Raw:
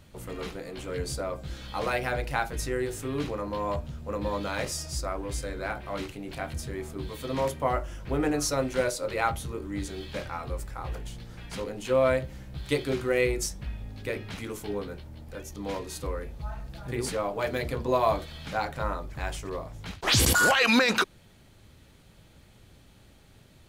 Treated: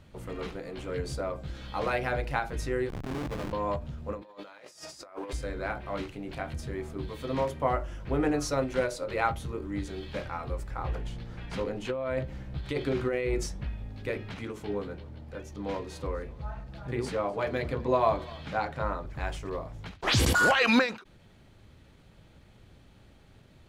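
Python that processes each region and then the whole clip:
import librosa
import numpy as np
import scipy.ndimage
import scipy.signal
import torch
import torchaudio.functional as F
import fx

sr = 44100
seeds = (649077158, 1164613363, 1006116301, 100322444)

y = fx.chain(x, sr, fx.comb(ms=6.7, depth=0.35),
    fx.schmitt(flips_db=-32.0),
    fx.transformer_sat(knee_hz=110.0), at=(2.89, 3.53))
y = fx.chain(y, sr, fx.highpass(hz=300.0, slope=12),
    fx.low_shelf(hz=470.0, db=-5.0),
    fx.over_compress(threshold_db=-41.0, ratio=-0.5), at=(4.22, 5.33))
y = fx.chain(y, sr, fx.high_shelf(hz=6300.0, db=-6.0),
    fx.over_compress(threshold_db=-28.0, ratio=-1.0), at=(10.7, 13.67))
y = fx.chain(y, sr, fx.highpass(hz=48.0, slope=12),
    fx.high_shelf(hz=9500.0, db=-8.0),
    fx.echo_single(ms=250, db=-21.0), at=(14.32, 19.06))
y = fx.lowpass(y, sr, hz=3100.0, slope=6)
y = fx.end_taper(y, sr, db_per_s=140.0)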